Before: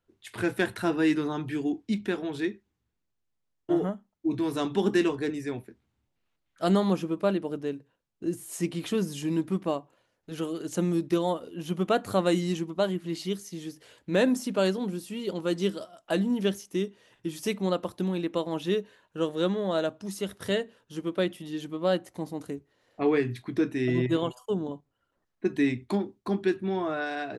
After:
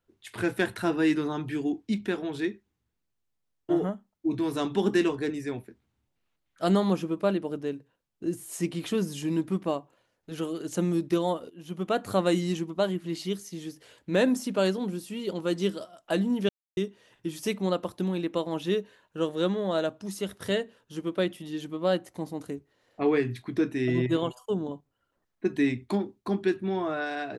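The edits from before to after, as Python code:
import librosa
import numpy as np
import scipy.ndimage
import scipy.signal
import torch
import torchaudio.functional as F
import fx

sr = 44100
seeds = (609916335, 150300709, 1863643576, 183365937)

y = fx.edit(x, sr, fx.fade_in_from(start_s=11.5, length_s=0.62, floor_db=-13.0),
    fx.silence(start_s=16.49, length_s=0.28), tone=tone)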